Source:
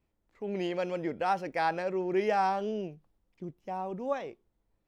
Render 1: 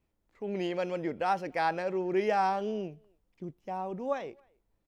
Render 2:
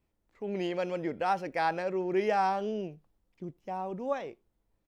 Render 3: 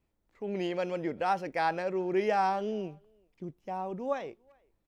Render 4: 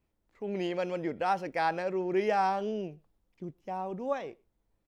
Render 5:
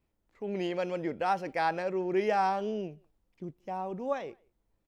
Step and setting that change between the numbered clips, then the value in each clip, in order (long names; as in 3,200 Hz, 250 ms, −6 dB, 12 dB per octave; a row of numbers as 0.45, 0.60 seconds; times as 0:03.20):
far-end echo of a speakerphone, delay time: 270, 80, 390, 120, 180 milliseconds